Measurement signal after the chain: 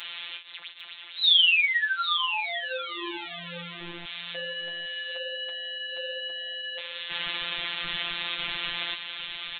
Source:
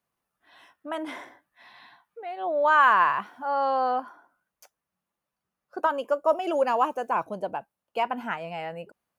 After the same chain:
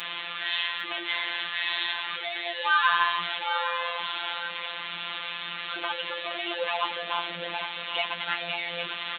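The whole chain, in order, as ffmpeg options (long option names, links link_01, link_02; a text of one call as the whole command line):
ffmpeg -i in.wav -filter_complex "[0:a]aeval=exprs='val(0)+0.5*0.0708*sgn(val(0))':channel_layout=same,tiltshelf=frequency=1300:gain=-10,flanger=delay=9.2:depth=9.1:regen=42:speed=1.2:shape=sinusoidal,acrossover=split=150[link_01][link_02];[link_01]acrusher=bits=4:dc=4:mix=0:aa=0.000001[link_03];[link_03][link_02]amix=inputs=2:normalize=0,aresample=8000,aresample=44100,crystalizer=i=3.5:c=0,aecho=1:1:802:0.299,afftfilt=real='hypot(re,im)*cos(PI*b)':imag='0':win_size=1024:overlap=0.75" out.wav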